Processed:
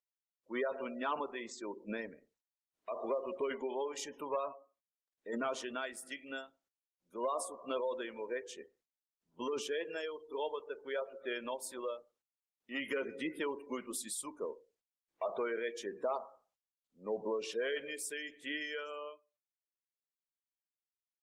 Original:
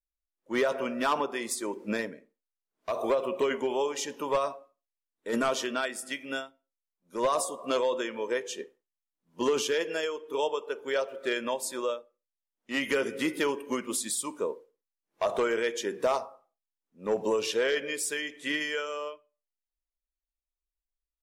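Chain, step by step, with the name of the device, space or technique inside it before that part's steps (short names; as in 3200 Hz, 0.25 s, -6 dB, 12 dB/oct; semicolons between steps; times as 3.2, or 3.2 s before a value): 8.45–9.53 dynamic EQ 370 Hz, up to -6 dB, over -41 dBFS, Q 2.8; noise-suppressed video call (HPF 120 Hz 6 dB/oct; spectral gate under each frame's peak -25 dB strong; gain -8.5 dB; Opus 24 kbps 48000 Hz)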